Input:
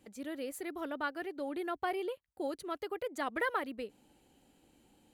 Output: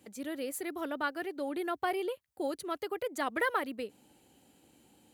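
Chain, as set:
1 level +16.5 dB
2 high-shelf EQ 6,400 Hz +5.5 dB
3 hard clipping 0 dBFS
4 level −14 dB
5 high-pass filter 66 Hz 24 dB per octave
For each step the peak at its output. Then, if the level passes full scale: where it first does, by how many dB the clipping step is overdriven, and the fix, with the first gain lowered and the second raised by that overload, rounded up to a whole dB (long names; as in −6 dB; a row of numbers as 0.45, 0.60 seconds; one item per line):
−5.5, −5.0, −5.0, −19.0, −19.0 dBFS
no step passes full scale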